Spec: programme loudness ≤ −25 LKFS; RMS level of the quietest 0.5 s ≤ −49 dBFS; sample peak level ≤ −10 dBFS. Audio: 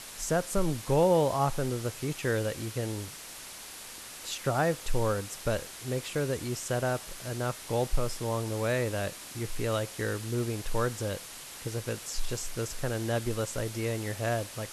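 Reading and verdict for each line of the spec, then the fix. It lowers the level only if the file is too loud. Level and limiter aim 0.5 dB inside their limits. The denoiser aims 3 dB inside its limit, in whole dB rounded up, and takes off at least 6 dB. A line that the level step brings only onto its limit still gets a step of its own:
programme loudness −31.5 LKFS: in spec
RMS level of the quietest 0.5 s −45 dBFS: out of spec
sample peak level −12.5 dBFS: in spec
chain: broadband denoise 7 dB, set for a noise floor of −45 dBFS

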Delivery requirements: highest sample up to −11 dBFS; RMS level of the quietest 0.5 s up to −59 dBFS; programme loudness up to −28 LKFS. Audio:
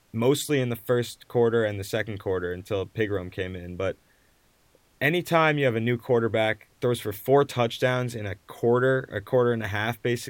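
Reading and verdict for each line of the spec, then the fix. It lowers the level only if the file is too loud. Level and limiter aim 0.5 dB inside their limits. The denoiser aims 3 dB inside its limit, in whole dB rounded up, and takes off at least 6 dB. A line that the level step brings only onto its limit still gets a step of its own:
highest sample −5.5 dBFS: out of spec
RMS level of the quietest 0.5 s −63 dBFS: in spec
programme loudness −25.5 LKFS: out of spec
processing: level −3 dB
brickwall limiter −11.5 dBFS

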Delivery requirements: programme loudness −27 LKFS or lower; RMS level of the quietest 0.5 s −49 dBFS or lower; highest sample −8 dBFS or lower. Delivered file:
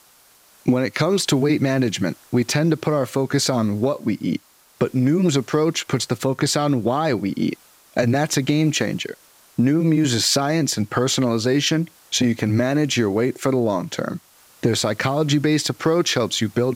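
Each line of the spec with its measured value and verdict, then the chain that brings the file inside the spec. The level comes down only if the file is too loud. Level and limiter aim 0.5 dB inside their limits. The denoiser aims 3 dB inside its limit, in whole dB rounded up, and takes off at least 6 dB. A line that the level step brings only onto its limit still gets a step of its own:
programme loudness −20.5 LKFS: out of spec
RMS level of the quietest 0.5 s −53 dBFS: in spec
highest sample −5.5 dBFS: out of spec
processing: level −7 dB

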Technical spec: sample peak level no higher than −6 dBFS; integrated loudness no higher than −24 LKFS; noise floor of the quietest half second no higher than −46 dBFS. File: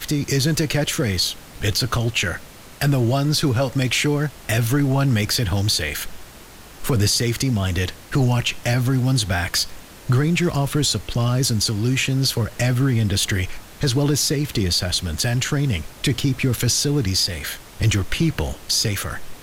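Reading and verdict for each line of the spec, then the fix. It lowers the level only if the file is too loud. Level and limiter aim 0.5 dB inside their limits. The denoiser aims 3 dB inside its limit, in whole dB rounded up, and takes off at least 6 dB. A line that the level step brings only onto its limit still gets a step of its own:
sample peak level −9.5 dBFS: in spec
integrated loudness −20.5 LKFS: out of spec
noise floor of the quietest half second −42 dBFS: out of spec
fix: broadband denoise 6 dB, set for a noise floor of −42 dBFS
level −4 dB

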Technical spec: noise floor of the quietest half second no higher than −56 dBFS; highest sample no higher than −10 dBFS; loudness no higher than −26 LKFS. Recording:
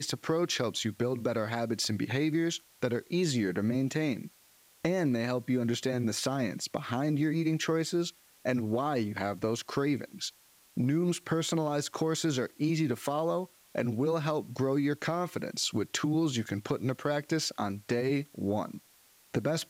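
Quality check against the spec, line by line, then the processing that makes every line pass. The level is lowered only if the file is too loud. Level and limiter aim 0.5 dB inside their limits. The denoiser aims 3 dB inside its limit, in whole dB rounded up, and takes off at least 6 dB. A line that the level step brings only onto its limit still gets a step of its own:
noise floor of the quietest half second −62 dBFS: in spec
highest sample −16.5 dBFS: in spec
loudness −31.5 LKFS: in spec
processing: no processing needed

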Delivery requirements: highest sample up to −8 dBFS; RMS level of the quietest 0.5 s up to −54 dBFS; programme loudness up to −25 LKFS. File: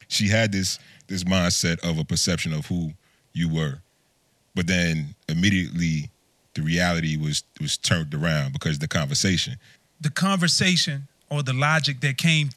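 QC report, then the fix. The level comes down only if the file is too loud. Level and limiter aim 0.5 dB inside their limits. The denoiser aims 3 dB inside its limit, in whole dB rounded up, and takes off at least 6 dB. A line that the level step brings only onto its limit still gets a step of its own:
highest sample −5.5 dBFS: out of spec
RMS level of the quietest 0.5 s −65 dBFS: in spec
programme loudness −23.5 LKFS: out of spec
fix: level −2 dB
brickwall limiter −8.5 dBFS

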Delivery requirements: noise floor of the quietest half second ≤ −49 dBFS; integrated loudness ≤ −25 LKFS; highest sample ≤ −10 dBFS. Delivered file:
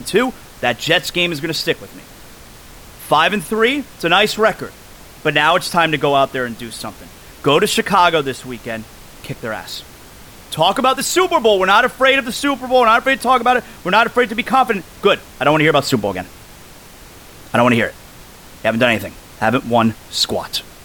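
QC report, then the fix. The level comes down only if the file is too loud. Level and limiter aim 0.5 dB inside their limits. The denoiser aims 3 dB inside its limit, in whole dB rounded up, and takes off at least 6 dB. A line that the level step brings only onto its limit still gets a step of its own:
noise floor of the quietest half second −40 dBFS: out of spec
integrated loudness −15.5 LKFS: out of spec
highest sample −1.5 dBFS: out of spec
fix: level −10 dB

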